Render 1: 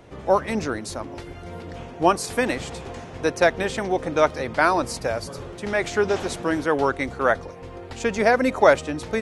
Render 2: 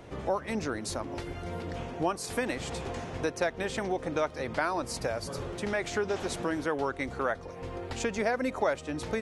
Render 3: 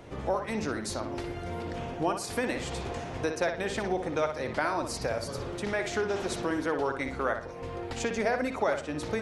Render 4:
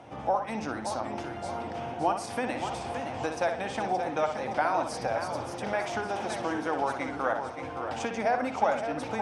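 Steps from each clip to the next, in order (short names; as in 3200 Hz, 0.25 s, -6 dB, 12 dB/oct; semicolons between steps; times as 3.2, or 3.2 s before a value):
compressor 2.5:1, threshold -31 dBFS, peak gain reduction 14.5 dB
analogue delay 60 ms, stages 2048, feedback 33%, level -7 dB
speaker cabinet 120–9600 Hz, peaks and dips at 170 Hz -5 dB, 400 Hz -9 dB, 790 Hz +9 dB, 1900 Hz -4 dB, 4200 Hz -7 dB, 7200 Hz -8 dB; warbling echo 0.571 s, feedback 47%, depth 131 cents, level -8 dB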